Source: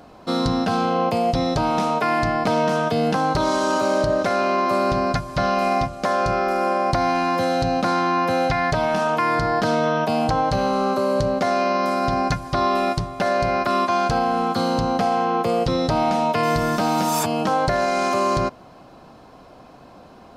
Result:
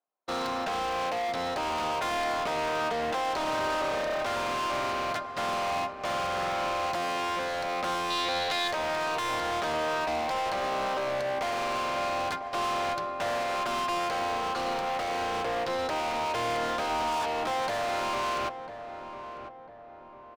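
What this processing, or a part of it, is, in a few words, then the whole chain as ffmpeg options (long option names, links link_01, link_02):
walkie-talkie: -filter_complex "[0:a]highpass=580,lowpass=3000,asoftclip=type=hard:threshold=-30dB,agate=range=-44dB:threshold=-36dB:ratio=16:detection=peak,asettb=1/sr,asplit=3[link_01][link_02][link_03];[link_01]atrim=end=8.104[link_04];[link_02]atrim=start=8.1:end=8.68,asetpts=PTS-STARTPTS,afade=type=in:duration=0.004:curve=qsin,afade=type=out:start_time=0.576:duration=0.004:curve=qsin,equalizer=frequency=3900:width_type=o:width=0.47:gain=13.5[link_05];[link_03]atrim=start=8.676[link_06];[link_04][link_05]acrossfade=duration=0.004:curve1=hsin:curve2=qsin[link_07];[link_07][link_06]acrossfade=duration=0.004:curve1=qsin:curve2=hsin,asplit=2[link_08][link_09];[link_09]adelay=998,lowpass=frequency=1300:poles=1,volume=-9.5dB,asplit=2[link_10][link_11];[link_11]adelay=998,lowpass=frequency=1300:poles=1,volume=0.49,asplit=2[link_12][link_13];[link_13]adelay=998,lowpass=frequency=1300:poles=1,volume=0.49,asplit=2[link_14][link_15];[link_15]adelay=998,lowpass=frequency=1300:poles=1,volume=0.49,asplit=2[link_16][link_17];[link_17]adelay=998,lowpass=frequency=1300:poles=1,volume=0.49[link_18];[link_08][link_10][link_12][link_14][link_16][link_18]amix=inputs=6:normalize=0,volume=1dB"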